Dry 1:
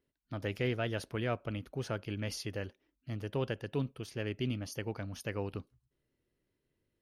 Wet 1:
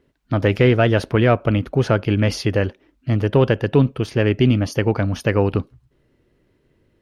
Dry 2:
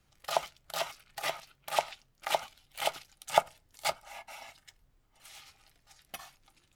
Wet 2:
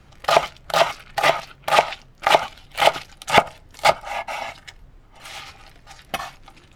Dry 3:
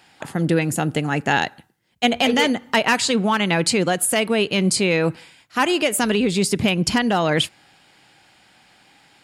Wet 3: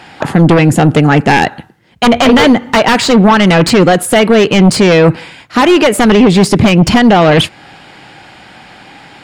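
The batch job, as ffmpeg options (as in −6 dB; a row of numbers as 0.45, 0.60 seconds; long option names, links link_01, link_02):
-filter_complex "[0:a]asplit=2[link_01][link_02];[link_02]acompressor=threshold=-31dB:ratio=6,volume=-3dB[link_03];[link_01][link_03]amix=inputs=2:normalize=0,aeval=exprs='0.596*sin(PI/2*2.82*val(0)/0.596)':channel_layout=same,lowpass=frequency=2100:poles=1,volume=3dB"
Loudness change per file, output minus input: +19.0, +13.5, +11.5 LU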